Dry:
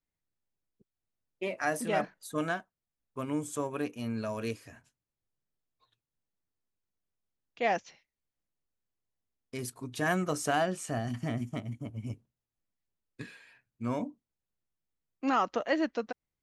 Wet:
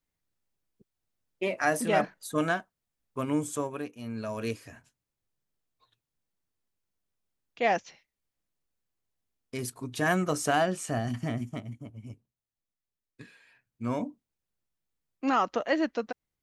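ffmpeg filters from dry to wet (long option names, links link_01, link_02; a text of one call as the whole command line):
ffmpeg -i in.wav -af "volume=21dB,afade=type=out:start_time=3.43:duration=0.49:silence=0.298538,afade=type=in:start_time=3.92:duration=0.63:silence=0.354813,afade=type=out:start_time=11.09:duration=0.89:silence=0.375837,afade=type=in:start_time=13.32:duration=0.6:silence=0.421697" out.wav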